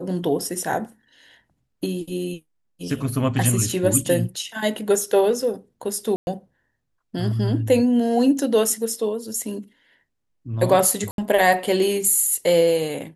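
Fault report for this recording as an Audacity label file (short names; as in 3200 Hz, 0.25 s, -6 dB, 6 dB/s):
6.160000	6.270000	gap 0.111 s
11.110000	11.180000	gap 72 ms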